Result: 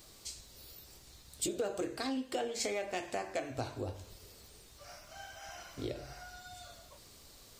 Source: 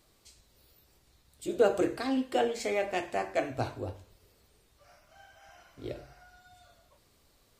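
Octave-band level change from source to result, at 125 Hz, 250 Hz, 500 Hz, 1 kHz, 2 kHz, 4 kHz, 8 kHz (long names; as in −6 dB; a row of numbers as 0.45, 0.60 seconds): −3.0, −6.0, −8.0, −7.0, −5.0, +0.5, +6.5 decibels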